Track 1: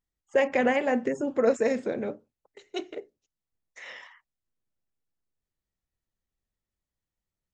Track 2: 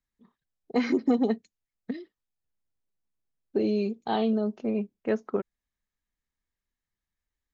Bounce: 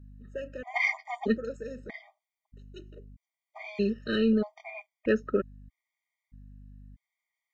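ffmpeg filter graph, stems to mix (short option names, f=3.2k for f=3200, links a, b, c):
-filter_complex "[0:a]volume=-14dB[a];[1:a]equalizer=f=2.1k:t=o:w=0.67:g=11.5,aeval=exprs='val(0)+0.00316*(sin(2*PI*50*n/s)+sin(2*PI*2*50*n/s)/2+sin(2*PI*3*50*n/s)/3+sin(2*PI*4*50*n/s)/4+sin(2*PI*5*50*n/s)/5)':c=same,volume=2.5dB[b];[a][b]amix=inputs=2:normalize=0,asoftclip=type=tanh:threshold=-11.5dB,afftfilt=real='re*gt(sin(2*PI*0.79*pts/sr)*(1-2*mod(floor(b*sr/1024/620),2)),0)':imag='im*gt(sin(2*PI*0.79*pts/sr)*(1-2*mod(floor(b*sr/1024/620),2)),0)':win_size=1024:overlap=0.75"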